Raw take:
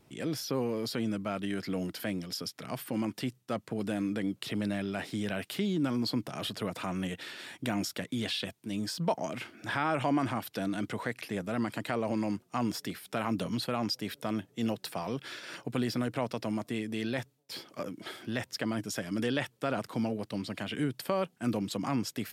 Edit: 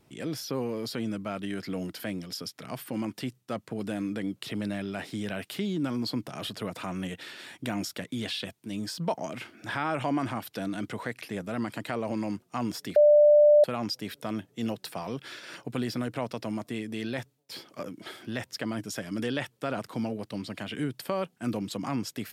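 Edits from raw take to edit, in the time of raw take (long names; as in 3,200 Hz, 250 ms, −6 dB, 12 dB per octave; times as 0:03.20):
0:12.96–0:13.64: beep over 593 Hz −14 dBFS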